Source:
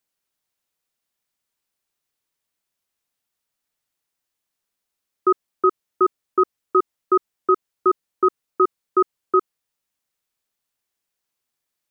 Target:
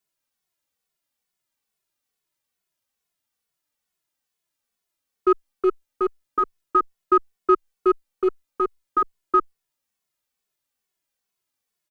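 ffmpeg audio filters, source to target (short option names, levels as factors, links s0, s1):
-filter_complex "[0:a]asplit=2[s0][s1];[s1]aeval=exprs='clip(val(0),-1,0.0841)':c=same,volume=0.266[s2];[s0][s2]amix=inputs=2:normalize=0,asplit=2[s3][s4];[s4]adelay=2.3,afreqshift=-2.3[s5];[s3][s5]amix=inputs=2:normalize=1"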